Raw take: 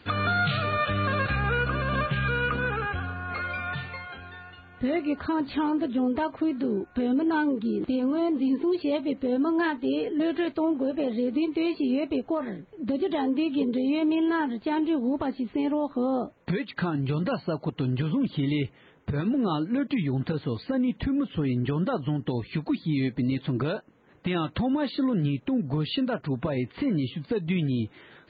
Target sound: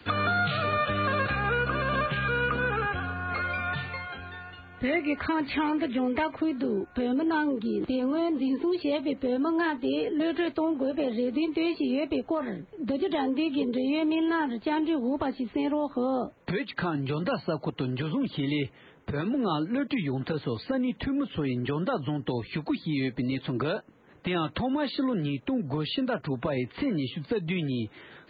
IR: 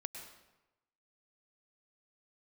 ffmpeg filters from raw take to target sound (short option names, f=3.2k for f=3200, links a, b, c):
-filter_complex "[0:a]asettb=1/sr,asplit=3[a][b][c];[a]atrim=end=4.834[d];[b]atrim=start=4.83:end=6.35,asetpts=PTS-STARTPTS,afade=t=in:d=0.004:c=qsin,afade=t=out:st=1.516:d=0.004:c=qsin,equalizer=f=2.2k:w=2.5:g=12[e];[c]atrim=start=6.346[f];[d][e]acrossfade=d=0.004:c1=hsin:c2=qsin[g];[g][f]acrossfade=d=0.004:c1=qsin:c2=hsin,acrossover=split=150|300|1300[h][i][j][k];[h]acompressor=threshold=-39dB:ratio=4[l];[i]acompressor=threshold=-40dB:ratio=4[m];[j]acompressor=threshold=-28dB:ratio=4[n];[k]acompressor=threshold=-33dB:ratio=4[o];[l][m][n][o]amix=inputs=4:normalize=0,volume=2dB"